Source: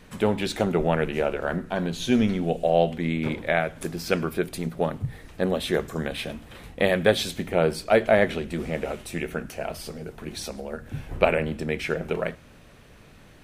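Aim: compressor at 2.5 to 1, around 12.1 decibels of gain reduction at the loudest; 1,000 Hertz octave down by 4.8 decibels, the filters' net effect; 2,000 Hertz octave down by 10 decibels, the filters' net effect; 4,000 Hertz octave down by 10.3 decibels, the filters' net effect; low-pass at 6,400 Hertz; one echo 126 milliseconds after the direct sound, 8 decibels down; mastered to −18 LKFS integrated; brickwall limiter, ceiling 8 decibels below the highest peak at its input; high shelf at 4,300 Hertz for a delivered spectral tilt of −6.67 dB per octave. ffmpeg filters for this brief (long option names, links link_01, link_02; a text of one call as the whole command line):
ffmpeg -i in.wav -af "lowpass=6400,equalizer=frequency=1000:width_type=o:gain=-5.5,equalizer=frequency=2000:width_type=o:gain=-8.5,equalizer=frequency=4000:width_type=o:gain=-6.5,highshelf=frequency=4300:gain=-5,acompressor=threshold=-35dB:ratio=2.5,alimiter=level_in=2.5dB:limit=-24dB:level=0:latency=1,volume=-2.5dB,aecho=1:1:126:0.398,volume=20.5dB" out.wav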